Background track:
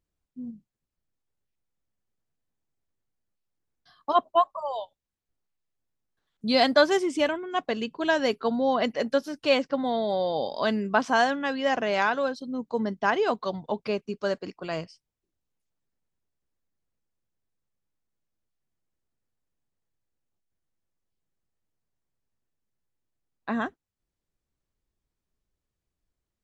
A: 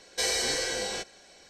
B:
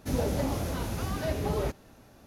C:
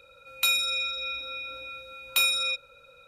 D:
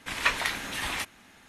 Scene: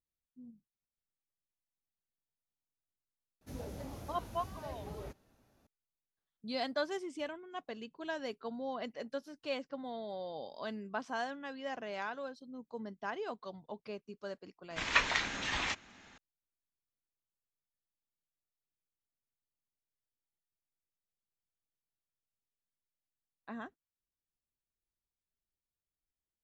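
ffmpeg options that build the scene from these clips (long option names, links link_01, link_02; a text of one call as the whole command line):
ffmpeg -i bed.wav -i cue0.wav -i cue1.wav -i cue2.wav -i cue3.wav -filter_complex "[0:a]volume=-15.5dB[link_01];[4:a]aresample=16000,aresample=44100[link_02];[2:a]atrim=end=2.26,asetpts=PTS-STARTPTS,volume=-15.5dB,afade=type=in:duration=0.004:curve=hsin,afade=type=out:start_time=2.256:duration=0.004:curve=hsin,adelay=150381S[link_03];[link_02]atrim=end=1.48,asetpts=PTS-STARTPTS,volume=-3dB,afade=type=in:duration=0.004:curve=hsin,afade=type=out:start_time=1.476:duration=0.004:curve=hsin,adelay=14700[link_04];[link_01][link_03][link_04]amix=inputs=3:normalize=0" out.wav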